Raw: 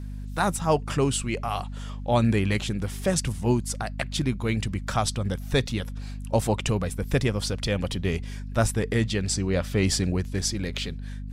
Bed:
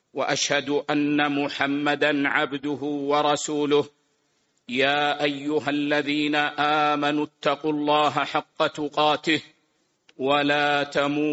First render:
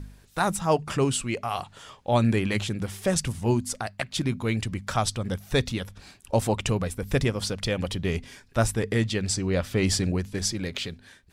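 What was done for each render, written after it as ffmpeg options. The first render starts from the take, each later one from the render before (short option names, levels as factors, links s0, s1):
-af "bandreject=f=50:t=h:w=4,bandreject=f=100:t=h:w=4,bandreject=f=150:t=h:w=4,bandreject=f=200:t=h:w=4,bandreject=f=250:t=h:w=4"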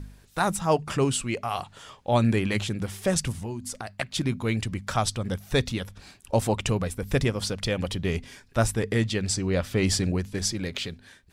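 -filter_complex "[0:a]asettb=1/sr,asplit=3[s0][s1][s2];[s0]atrim=end=3.404[s3];[s1]atrim=start=3.4:end=3.92,asetpts=PTS-STARTPTS,afade=t=in:d=0.004:c=qsin,afade=t=out:st=0.516:d=0.004:c=qsin,acompressor=threshold=0.0316:ratio=5:attack=3.2:release=140:knee=1:detection=peak[s4];[s2]atrim=start=3.916[s5];[s3][s4]acrossfade=d=0.004:c1=hsin:c2=qsin[s6];[s6][s5]acrossfade=d=0.004:c1=qsin:c2=hsin"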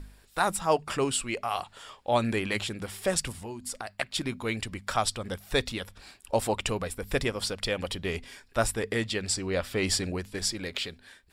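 -af "equalizer=f=130:t=o:w=2.1:g=-10.5,bandreject=f=6200:w=7.7"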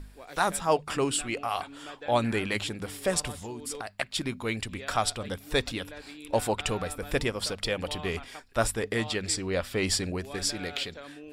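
-filter_complex "[1:a]volume=0.0794[s0];[0:a][s0]amix=inputs=2:normalize=0"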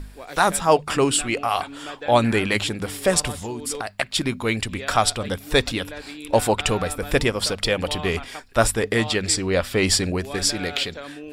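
-af "volume=2.51,alimiter=limit=0.708:level=0:latency=1"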